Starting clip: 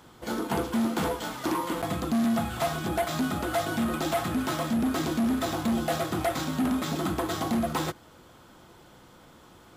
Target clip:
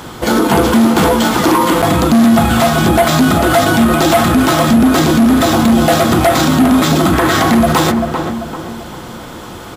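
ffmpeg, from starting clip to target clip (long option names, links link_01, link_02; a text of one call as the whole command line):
ffmpeg -i in.wav -filter_complex "[0:a]asettb=1/sr,asplit=3[link_01][link_02][link_03];[link_01]atrim=end=7.134[link_04];[link_02]atrim=start=7.13:end=7.55,asetpts=PTS-STARTPTS,afade=type=in:duration=0.004:curve=qsin,afade=type=out:start_time=0.416:duration=0.004:curve=qsin,equalizer=frequency=1800:width_type=o:width=1:gain=8[link_05];[link_03]atrim=start=7.546[link_06];[link_04][link_05]acrossfade=duration=0.004:curve1=hsin:curve2=qsin[link_07];[link_07][link_06]acrossfade=duration=0.004:curve1=qsin:curve2=hsin,asplit=2[link_08][link_09];[link_09]adelay=391,lowpass=frequency=1500:poles=1,volume=-11dB,asplit=2[link_10][link_11];[link_11]adelay=391,lowpass=frequency=1500:poles=1,volume=0.44,asplit=2[link_12][link_13];[link_13]adelay=391,lowpass=frequency=1500:poles=1,volume=0.44,asplit=2[link_14][link_15];[link_15]adelay=391,lowpass=frequency=1500:poles=1,volume=0.44,asplit=2[link_16][link_17];[link_17]adelay=391,lowpass=frequency=1500:poles=1,volume=0.44[link_18];[link_08][link_10][link_12][link_14][link_16][link_18]amix=inputs=6:normalize=0,alimiter=level_in=25.5dB:limit=-1dB:release=50:level=0:latency=1,volume=-2.5dB" out.wav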